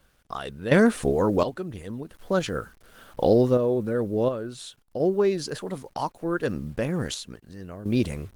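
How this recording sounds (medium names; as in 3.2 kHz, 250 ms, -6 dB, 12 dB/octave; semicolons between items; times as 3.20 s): a quantiser's noise floor 10-bit, dither none; random-step tremolo 1.4 Hz, depth 75%; Opus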